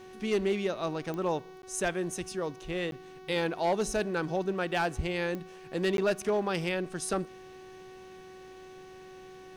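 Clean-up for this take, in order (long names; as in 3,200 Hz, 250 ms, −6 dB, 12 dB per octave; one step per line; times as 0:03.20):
clipped peaks rebuilt −21.5 dBFS
click removal
hum removal 373.8 Hz, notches 18
repair the gap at 0:01.62/0:02.91/0:05.97, 12 ms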